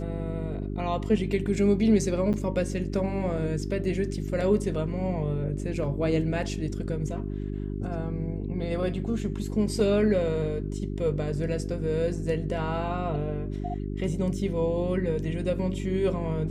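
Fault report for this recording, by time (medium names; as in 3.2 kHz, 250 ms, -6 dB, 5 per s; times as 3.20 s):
hum 50 Hz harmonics 8 -32 dBFS
2.33–2.34 s: dropout 8.4 ms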